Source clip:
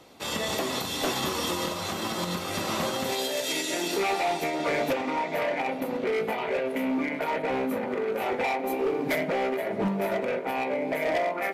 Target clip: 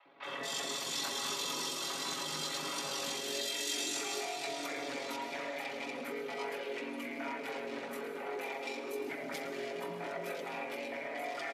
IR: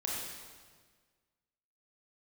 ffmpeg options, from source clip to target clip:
-filter_complex "[0:a]highpass=270,lowpass=7300,aeval=exprs='val(0)*sin(2*PI*23*n/s)':channel_layout=same,aecho=1:1:7.2:0.77,acrossover=split=650|2400[link_01][link_02][link_03];[link_01]adelay=50[link_04];[link_03]adelay=230[link_05];[link_04][link_02][link_05]amix=inputs=3:normalize=0,alimiter=level_in=4dB:limit=-24dB:level=0:latency=1:release=276,volume=-4dB,tiltshelf=frequency=1200:gain=-4,asplit=2[link_06][link_07];[1:a]atrim=start_sample=2205,lowshelf=frequency=390:gain=10,adelay=111[link_08];[link_07][link_08]afir=irnorm=-1:irlink=0,volume=-12dB[link_09];[link_06][link_09]amix=inputs=2:normalize=0,crystalizer=i=1:c=0,volume=-2.5dB"

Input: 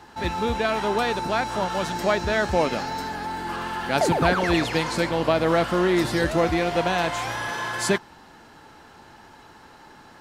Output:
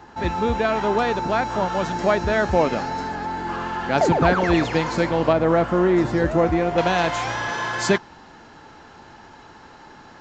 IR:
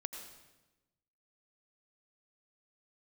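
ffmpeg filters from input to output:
-af "aresample=16000,aresample=44100,asetnsamples=nb_out_samples=441:pad=0,asendcmd='5.33 equalizer g -14.5;6.78 equalizer g -2',equalizer=frequency=4300:width_type=o:width=2:gain=-7,volume=3.5dB"

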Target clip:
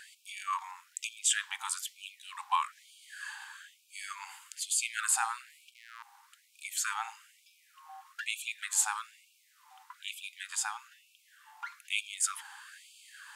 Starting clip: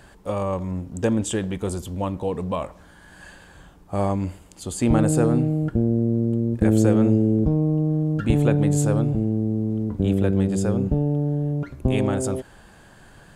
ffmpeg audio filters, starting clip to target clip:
ffmpeg -i in.wav -filter_complex "[0:a]asettb=1/sr,asplit=3[link_01][link_02][link_03];[link_01]atrim=end=5.474[link_04];[link_02]atrim=start=5.47:end=6.03,asetpts=PTS-STARTPTS,afade=type=in:duration=0.004:curve=qsin,afade=type=out:start_time=0.556:duration=0.004:curve=qsin,aeval=exprs='if(lt(val(0),0),0.251*val(0),val(0))':channel_layout=same[link_05];[link_03]atrim=start=6.026[link_06];[link_04][link_05]acrossfade=duration=0.004:curve1=hsin:curve2=qsin[link_07];[link_07][link_06]acrossfade=duration=0.004:curve1=qsin:curve2=hsin,afftfilt=real='re*gte(b*sr/1024,740*pow(2300/740,0.5+0.5*sin(2*PI*1.1*pts/sr)))':imag='im*gte(b*sr/1024,740*pow(2300/740,0.5+0.5*sin(2*PI*1.1*pts/sr)))':win_size=1024:overlap=0.75,volume=3.5dB" out.wav

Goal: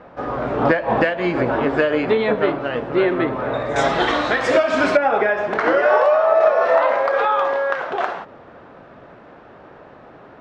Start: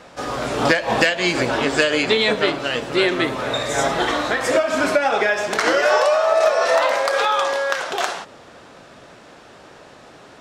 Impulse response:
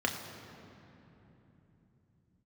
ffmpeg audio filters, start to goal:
-af "asetnsamples=nb_out_samples=441:pad=0,asendcmd='3.76 lowpass f 4200;4.97 lowpass f 1600',lowpass=1400,volume=2dB"

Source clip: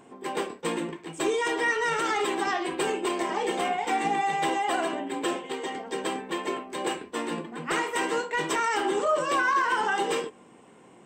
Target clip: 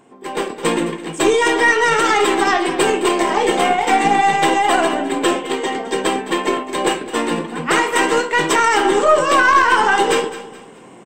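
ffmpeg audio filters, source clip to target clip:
ffmpeg -i in.wav -filter_complex "[0:a]aeval=exprs='0.168*(cos(1*acos(clip(val(0)/0.168,-1,1)))-cos(1*PI/2))+0.0168*(cos(2*acos(clip(val(0)/0.168,-1,1)))-cos(2*PI/2))+0.00841*(cos(3*acos(clip(val(0)/0.168,-1,1)))-cos(3*PI/2))':channel_layout=same,asplit=2[link_01][link_02];[link_02]aecho=0:1:213|426|639:0.178|0.0622|0.0218[link_03];[link_01][link_03]amix=inputs=2:normalize=0,dynaudnorm=framelen=160:gausssize=5:maxgain=10dB,volume=3dB" out.wav

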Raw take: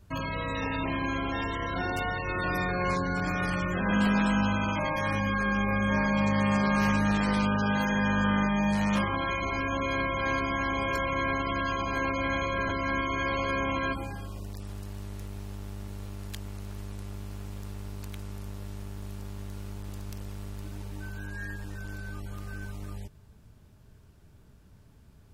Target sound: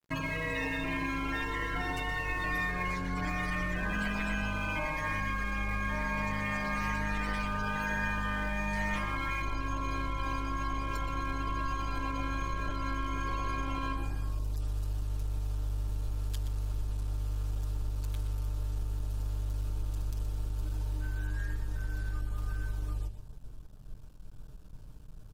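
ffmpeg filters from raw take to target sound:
ffmpeg -i in.wav -filter_complex "[0:a]asetnsamples=nb_out_samples=441:pad=0,asendcmd='9.42 equalizer g -9.5',equalizer=frequency=2000:width_type=o:width=0.49:gain=8,aecho=1:1:6.6:0.93,asubboost=boost=6:cutoff=71,acompressor=threshold=-30dB:ratio=5,aeval=exprs='sgn(val(0))*max(abs(val(0))-0.00355,0)':channel_layout=same,asplit=2[link_01][link_02];[link_02]adelay=122.4,volume=-9dB,highshelf=frequency=4000:gain=-2.76[link_03];[link_01][link_03]amix=inputs=2:normalize=0" out.wav

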